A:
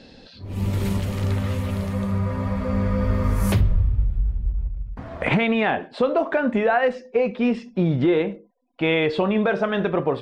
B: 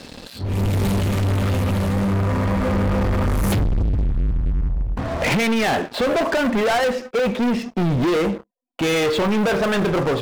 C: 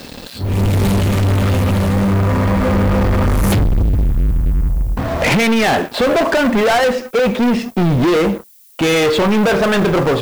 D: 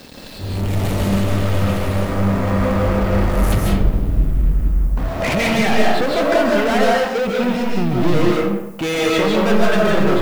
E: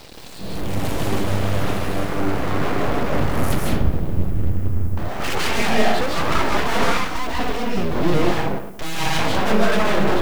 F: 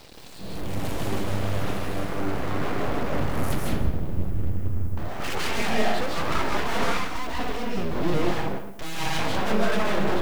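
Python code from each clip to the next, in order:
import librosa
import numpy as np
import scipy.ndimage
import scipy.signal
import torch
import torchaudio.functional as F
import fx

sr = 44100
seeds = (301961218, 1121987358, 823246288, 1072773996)

y1 = fx.leveller(x, sr, passes=5)
y1 = y1 * librosa.db_to_amplitude(-7.0)
y2 = fx.dmg_noise_colour(y1, sr, seeds[0], colour='violet', level_db=-52.0)
y2 = y2 * librosa.db_to_amplitude(5.5)
y3 = fx.rev_freeverb(y2, sr, rt60_s=0.87, hf_ratio=0.6, predelay_ms=110, drr_db=-3.0)
y3 = y3 * librosa.db_to_amplitude(-7.0)
y4 = np.abs(y3)
y4 = y4 * librosa.db_to_amplitude(-1.0)
y5 = y4 + 10.0 ** (-15.5 / 20.0) * np.pad(y4, (int(161 * sr / 1000.0), 0))[:len(y4)]
y5 = y5 * librosa.db_to_amplitude(-6.0)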